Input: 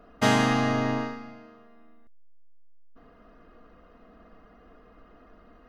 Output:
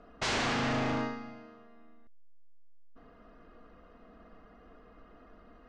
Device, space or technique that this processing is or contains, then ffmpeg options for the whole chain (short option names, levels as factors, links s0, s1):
synthesiser wavefolder: -af "aeval=exprs='0.0668*(abs(mod(val(0)/0.0668+3,4)-2)-1)':c=same,lowpass=f=7200:w=0.5412,lowpass=f=7200:w=1.3066,volume=0.794"